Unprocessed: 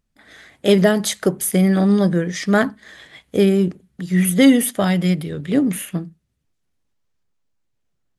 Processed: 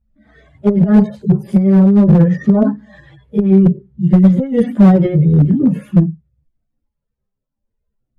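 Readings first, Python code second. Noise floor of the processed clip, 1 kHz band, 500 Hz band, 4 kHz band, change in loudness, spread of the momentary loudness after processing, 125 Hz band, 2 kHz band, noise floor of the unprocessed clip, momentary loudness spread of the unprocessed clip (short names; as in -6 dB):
-77 dBFS, +1.0 dB, +1.0 dB, under -15 dB, +5.5 dB, 8 LU, +10.0 dB, n/a, -72 dBFS, 11 LU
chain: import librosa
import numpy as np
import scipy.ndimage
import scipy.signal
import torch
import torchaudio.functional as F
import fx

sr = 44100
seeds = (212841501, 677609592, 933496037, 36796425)

y = fx.hpss_only(x, sr, part='harmonic')
y = fx.noise_reduce_blind(y, sr, reduce_db=7)
y = fx.high_shelf(y, sr, hz=6300.0, db=-12.0)
y = fx.over_compress(y, sr, threshold_db=-18.0, ratio=-0.5)
y = fx.tilt_shelf(y, sr, db=9.0, hz=1100.0)
y = fx.wow_flutter(y, sr, seeds[0], rate_hz=2.1, depth_cents=19.0)
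y = fx.chorus_voices(y, sr, voices=4, hz=0.81, base_ms=14, depth_ms=1.2, mix_pct=65)
y = fx.clip_asym(y, sr, top_db=-10.5, bottom_db=-7.5)
y = F.gain(torch.from_numpy(y), 6.0).numpy()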